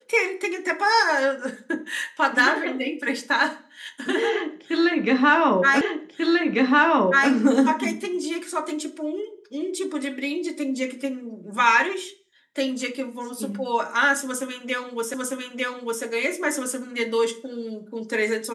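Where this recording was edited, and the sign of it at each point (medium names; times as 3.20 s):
5.81 s: repeat of the last 1.49 s
15.14 s: repeat of the last 0.9 s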